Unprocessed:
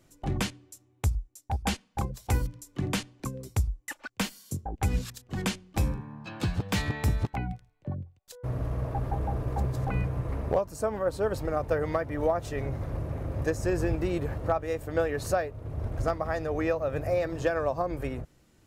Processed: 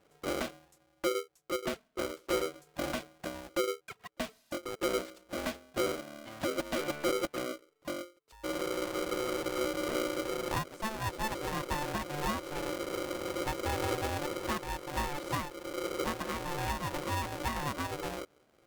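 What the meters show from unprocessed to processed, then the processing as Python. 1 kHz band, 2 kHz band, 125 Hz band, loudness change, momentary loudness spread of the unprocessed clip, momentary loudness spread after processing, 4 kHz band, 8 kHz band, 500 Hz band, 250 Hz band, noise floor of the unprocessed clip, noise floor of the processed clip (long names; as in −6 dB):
−1.0 dB, −1.0 dB, −13.0 dB, −4.5 dB, 9 LU, 8 LU, +2.0 dB, −0.5 dB, −4.5 dB, −3.5 dB, −64 dBFS, −70 dBFS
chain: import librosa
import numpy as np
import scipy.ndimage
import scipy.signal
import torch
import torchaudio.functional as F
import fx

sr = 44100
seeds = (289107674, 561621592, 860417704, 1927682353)

y = fx.bass_treble(x, sr, bass_db=3, treble_db=-12)
y = 10.0 ** (-16.5 / 20.0) * np.tanh(y / 10.0 ** (-16.5 / 20.0))
y = y * np.sign(np.sin(2.0 * np.pi * 440.0 * np.arange(len(y)) / sr))
y = F.gain(torch.from_numpy(y), -6.5).numpy()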